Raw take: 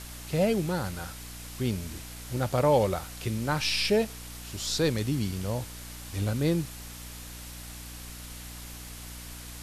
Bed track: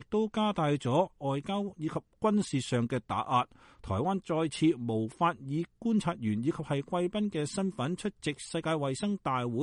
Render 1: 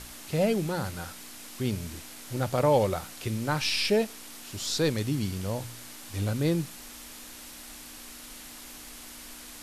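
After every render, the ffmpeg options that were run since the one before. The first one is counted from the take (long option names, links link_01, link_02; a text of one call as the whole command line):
ffmpeg -i in.wav -af "bandreject=frequency=60:width_type=h:width=4,bandreject=frequency=120:width_type=h:width=4,bandreject=frequency=180:width_type=h:width=4" out.wav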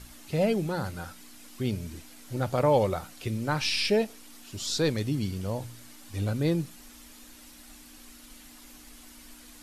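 ffmpeg -i in.wav -af "afftdn=noise_reduction=8:noise_floor=-45" out.wav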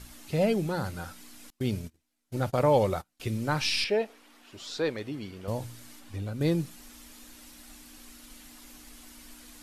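ffmpeg -i in.wav -filter_complex "[0:a]asettb=1/sr,asplit=3[link_01][link_02][link_03];[link_01]atrim=end=1.504[link_04];[link_02]atrim=start=1.5:end=3.2,asetpts=PTS-STARTPTS,afade=type=in:duration=0.004:curve=qsin,afade=type=out:start_time=1.696:duration=0.004:curve=qsin,agate=range=-31dB:threshold=-37dB:ratio=16:release=100:detection=peak[link_05];[link_03]atrim=start=3.196[link_06];[link_04][link_05]acrossfade=duration=0.004:curve1=hsin:curve2=qsin[link_07];[link_07][link_06]acrossfade=duration=0.004:curve1=qsin:curve2=hsin,asettb=1/sr,asplit=3[link_08][link_09][link_10];[link_08]atrim=end=3.844[link_11];[link_09]atrim=start=3.84:end=5.48,asetpts=PTS-STARTPTS,afade=type=in:duration=0.004:curve=qsin,afade=type=out:start_time=1.636:duration=0.004:curve=qsin,bass=frequency=250:gain=-14,treble=frequency=4000:gain=-14[link_12];[link_10]atrim=start=5.476[link_13];[link_11][link_12]acrossfade=duration=0.004:curve1=hsin:curve2=qsin[link_14];[link_14][link_13]acrossfade=duration=0.004:curve1=qsin:curve2=hsin,asettb=1/sr,asplit=3[link_15][link_16][link_17];[link_15]atrim=end=5.994[link_18];[link_16]atrim=start=5.99:end=6.41,asetpts=PTS-STARTPTS,afade=type=in:duration=0.004:curve=qsin,afade=type=out:start_time=0.416:duration=0.004:curve=qsin,acrossover=split=1700|3700[link_19][link_20][link_21];[link_19]acompressor=threshold=-32dB:ratio=4[link_22];[link_20]acompressor=threshold=-57dB:ratio=4[link_23];[link_21]acompressor=threshold=-60dB:ratio=4[link_24];[link_22][link_23][link_24]amix=inputs=3:normalize=0[link_25];[link_17]atrim=start=6.406[link_26];[link_18][link_25]acrossfade=duration=0.004:curve1=hsin:curve2=qsin[link_27];[link_27][link_26]acrossfade=duration=0.004:curve1=qsin:curve2=hsin" out.wav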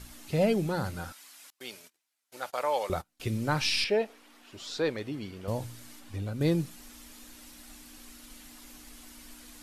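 ffmpeg -i in.wav -filter_complex "[0:a]asettb=1/sr,asplit=3[link_01][link_02][link_03];[link_01]atrim=end=1.124[link_04];[link_02]atrim=start=1.12:end=2.9,asetpts=PTS-STARTPTS,afade=type=in:duration=0.004:curve=qsin,afade=type=out:start_time=1.776:duration=0.004:curve=qsin,highpass=830[link_05];[link_03]atrim=start=2.896[link_06];[link_04][link_05]acrossfade=duration=0.004:curve1=hsin:curve2=qsin[link_07];[link_07][link_06]acrossfade=duration=0.004:curve1=qsin:curve2=hsin" out.wav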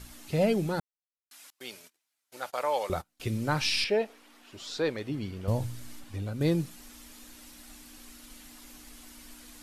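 ffmpeg -i in.wav -filter_complex "[0:a]asettb=1/sr,asplit=3[link_01][link_02][link_03];[link_01]atrim=end=5.094[link_04];[link_02]atrim=start=5.09:end=6.04,asetpts=PTS-STARTPTS,afade=type=in:duration=0.004:curve=qsin,afade=type=out:start_time=0.946:duration=0.004:curve=qsin,lowshelf=frequency=140:gain=11[link_05];[link_03]atrim=start=6.036[link_06];[link_04][link_05]acrossfade=duration=0.004:curve1=hsin:curve2=qsin[link_07];[link_07][link_06]acrossfade=duration=0.004:curve1=qsin:curve2=hsin,asplit=3[link_08][link_09][link_10];[link_08]atrim=end=0.8,asetpts=PTS-STARTPTS,afade=type=out:start_time=0.796:duration=0.004:curve=hsin[link_11];[link_09]atrim=start=0.8:end=1.31,asetpts=PTS-STARTPTS,volume=0[link_12];[link_10]atrim=start=1.31,asetpts=PTS-STARTPTS,afade=type=in:duration=0.004:curve=hsin[link_13];[link_11][link_12][link_13]concat=n=3:v=0:a=1" out.wav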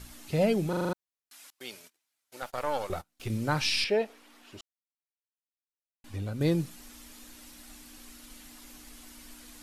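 ffmpeg -i in.wav -filter_complex "[0:a]asettb=1/sr,asplit=3[link_01][link_02][link_03];[link_01]atrim=end=2.424[link_04];[link_02]atrim=start=2.42:end=3.3,asetpts=PTS-STARTPTS,afade=type=in:duration=0.004:curve=qsin,afade=type=out:start_time=0.876:duration=0.004:curve=qsin,aeval=exprs='if(lt(val(0),0),0.447*val(0),val(0))':channel_layout=same[link_05];[link_03]atrim=start=3.296[link_06];[link_04][link_05]acrossfade=duration=0.004:curve1=hsin:curve2=qsin[link_07];[link_07][link_06]acrossfade=duration=0.004:curve1=qsin:curve2=hsin,asplit=9[link_08][link_09][link_10][link_11][link_12][link_13][link_14][link_15][link_16];[link_08]atrim=end=0.732[link_17];[link_09]atrim=start=0.688:end=0.732[link_18];[link_10]atrim=start=0.688:end=0.732[link_19];[link_11]atrim=start=0.688:end=0.732[link_20];[link_12]atrim=start=0.688:end=0.732[link_21];[link_13]atrim=start=0.688:end=0.732[link_22];[link_14]atrim=start=0.928:end=4.61,asetpts=PTS-STARTPTS,afade=type=out:start_time=3.678:duration=0.004:curve=hsin[link_23];[link_15]atrim=start=4.61:end=6.04,asetpts=PTS-STARTPTS,volume=0[link_24];[link_16]atrim=start=6.04,asetpts=PTS-STARTPTS,afade=type=in:duration=0.004:curve=hsin[link_25];[link_17][link_18]acrossfade=duration=0.004:curve1=hsin:curve2=hsin[link_26];[link_26][link_19]acrossfade=duration=0.004:curve1=hsin:curve2=hsin[link_27];[link_27][link_20]acrossfade=duration=0.004:curve1=hsin:curve2=hsin[link_28];[link_28][link_21]acrossfade=duration=0.004:curve1=hsin:curve2=hsin[link_29];[link_29][link_22]acrossfade=duration=0.004:curve1=hsin:curve2=hsin[link_30];[link_23][link_24][link_25]concat=n=3:v=0:a=1[link_31];[link_30][link_31]acrossfade=duration=0.004:curve1=hsin:curve2=hsin" out.wav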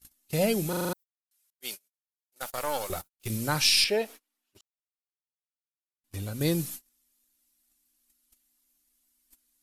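ffmpeg -i in.wav -af "agate=range=-33dB:threshold=-43dB:ratio=16:detection=peak,aemphasis=mode=production:type=75fm" out.wav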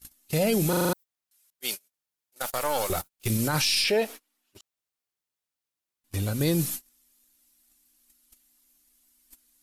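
ffmpeg -i in.wav -af "acontrast=76,alimiter=limit=-16dB:level=0:latency=1:release=19" out.wav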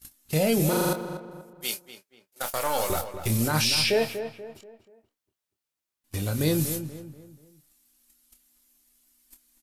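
ffmpeg -i in.wav -filter_complex "[0:a]asplit=2[link_01][link_02];[link_02]adelay=26,volume=-9dB[link_03];[link_01][link_03]amix=inputs=2:normalize=0,asplit=2[link_04][link_05];[link_05]adelay=241,lowpass=frequency=2100:poles=1,volume=-9.5dB,asplit=2[link_06][link_07];[link_07]adelay=241,lowpass=frequency=2100:poles=1,volume=0.41,asplit=2[link_08][link_09];[link_09]adelay=241,lowpass=frequency=2100:poles=1,volume=0.41,asplit=2[link_10][link_11];[link_11]adelay=241,lowpass=frequency=2100:poles=1,volume=0.41[link_12];[link_06][link_08][link_10][link_12]amix=inputs=4:normalize=0[link_13];[link_04][link_13]amix=inputs=2:normalize=0" out.wav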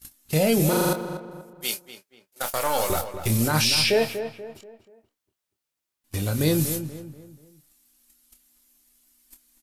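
ffmpeg -i in.wav -af "volume=2.5dB" out.wav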